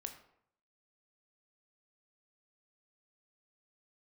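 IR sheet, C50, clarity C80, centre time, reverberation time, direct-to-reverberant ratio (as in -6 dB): 9.5 dB, 12.5 dB, 14 ms, 0.70 s, 5.5 dB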